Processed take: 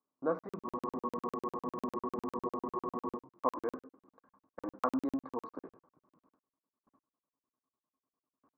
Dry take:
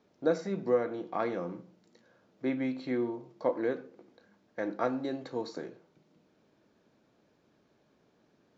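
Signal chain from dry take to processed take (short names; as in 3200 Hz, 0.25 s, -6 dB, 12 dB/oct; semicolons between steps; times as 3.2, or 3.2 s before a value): gate with hold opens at -57 dBFS; synth low-pass 1100 Hz, resonance Q 12; bell 270 Hz +11 dB 0.2 oct; flange 2 Hz, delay 2.3 ms, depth 3 ms, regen -77%; spectral freeze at 0.67, 2.49 s; crackling interface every 0.10 s, samples 2048, zero, from 0.39; gain -3.5 dB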